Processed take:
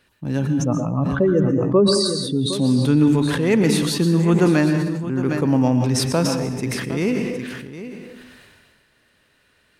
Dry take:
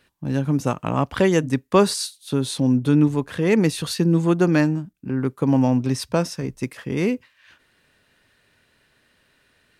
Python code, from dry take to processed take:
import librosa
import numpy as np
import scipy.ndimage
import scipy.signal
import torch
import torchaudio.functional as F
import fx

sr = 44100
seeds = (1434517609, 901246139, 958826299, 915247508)

y = fx.spec_expand(x, sr, power=2.2, at=(0.47, 2.53))
y = y + 10.0 ** (-13.0 / 20.0) * np.pad(y, (int(761 * sr / 1000.0), 0))[:len(y)]
y = fx.rev_plate(y, sr, seeds[0], rt60_s=0.7, hf_ratio=0.85, predelay_ms=105, drr_db=7.5)
y = fx.sustainer(y, sr, db_per_s=29.0)